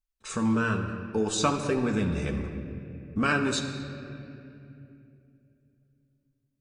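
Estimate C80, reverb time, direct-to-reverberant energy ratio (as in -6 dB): 7.5 dB, 2.8 s, 2.0 dB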